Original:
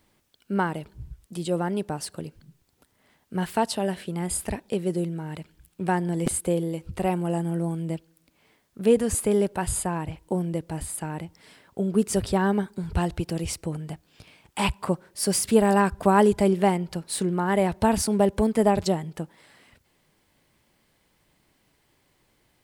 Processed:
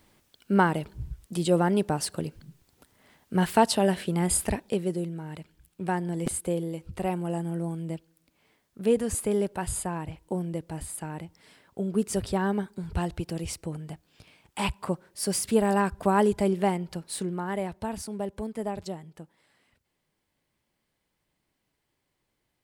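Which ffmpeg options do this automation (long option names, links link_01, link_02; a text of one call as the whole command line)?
ffmpeg -i in.wav -af "volume=3.5dB,afade=type=out:start_time=4.33:duration=0.66:silence=0.421697,afade=type=out:start_time=17:duration=0.86:silence=0.398107" out.wav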